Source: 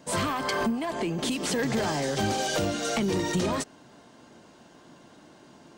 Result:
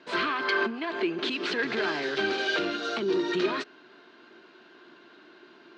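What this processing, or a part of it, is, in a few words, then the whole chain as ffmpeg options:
phone earpiece: -filter_complex "[0:a]highpass=370,equalizer=f=370:t=q:w=4:g=10,equalizer=f=540:t=q:w=4:g=-9,equalizer=f=810:t=q:w=4:g=-7,equalizer=f=1.5k:t=q:w=4:g=8,equalizer=f=2.5k:t=q:w=4:g=5,equalizer=f=4.1k:t=q:w=4:g=5,lowpass=f=4.2k:w=0.5412,lowpass=f=4.2k:w=1.3066,asettb=1/sr,asplit=3[a][b][c];[a]atrim=end=2.764[d];[b]atrim=start=2.76:end=3.32,asetpts=PTS-STARTPTS,afade=t=in:d=0.004:c=qsin,afade=t=out:st=0.556:d=0.004:c=qsin,equalizer=f=2.2k:w=1.6:g=-9[e];[c]atrim=start=3.316[f];[d][e]acrossfade=d=0.004:c1=hsin:c2=qsin[g];[g][f]acrossfade=d=0.004:c1=qsin:c2=hsin"

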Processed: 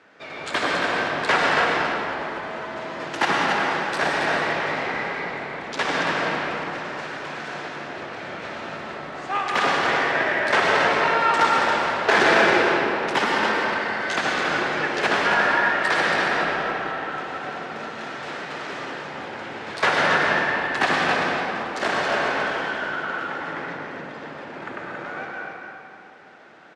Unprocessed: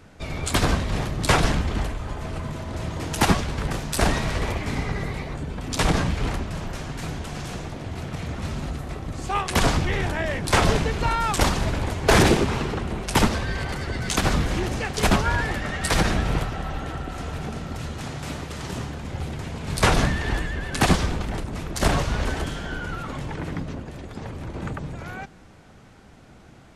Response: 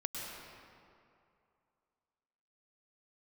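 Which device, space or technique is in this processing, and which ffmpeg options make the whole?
station announcement: -filter_complex "[0:a]highpass=410,lowpass=4k,equalizer=f=1.7k:t=o:w=0.5:g=5.5,aecho=1:1:58.31|277:0.251|0.501[a];[1:a]atrim=start_sample=2205[b];[a][b]afir=irnorm=-1:irlink=0,volume=1.5dB"

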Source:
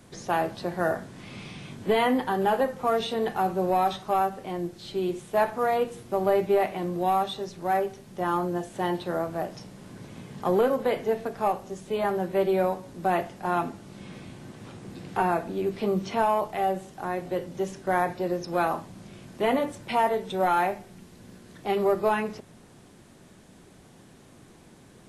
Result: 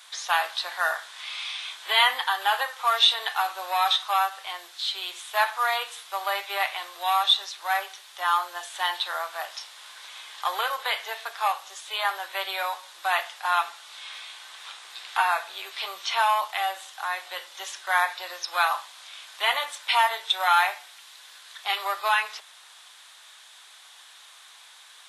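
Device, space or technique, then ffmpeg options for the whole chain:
headphones lying on a table: -af "highpass=f=1k:w=0.5412,highpass=f=1k:w=1.3066,equalizer=f=3.6k:t=o:w=0.52:g=10,volume=8dB"

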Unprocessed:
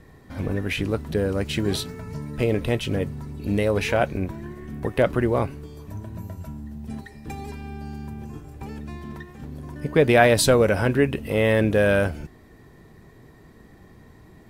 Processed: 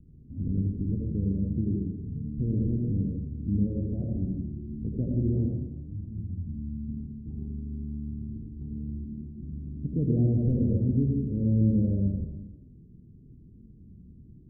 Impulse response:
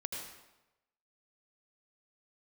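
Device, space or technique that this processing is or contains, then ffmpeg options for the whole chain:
next room: -filter_complex "[0:a]lowpass=f=260:w=0.5412,lowpass=f=260:w=1.3066[a];[1:a]atrim=start_sample=2205[b];[a][b]afir=irnorm=-1:irlink=0"

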